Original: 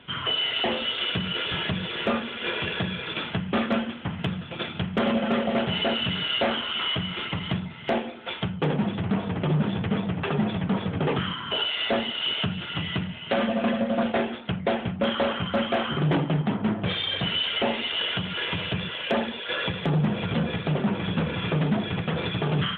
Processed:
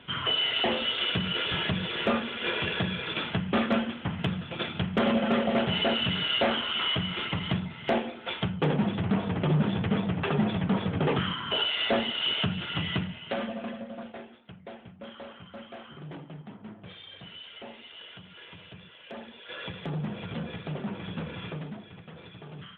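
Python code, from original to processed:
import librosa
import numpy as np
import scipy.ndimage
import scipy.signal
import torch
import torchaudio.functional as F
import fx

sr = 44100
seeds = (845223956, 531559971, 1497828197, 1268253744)

y = fx.gain(x, sr, db=fx.line((12.96, -1.0), (13.66, -12.0), (14.26, -19.0), (19.01, -19.0), (19.71, -9.5), (21.43, -9.5), (21.86, -19.0)))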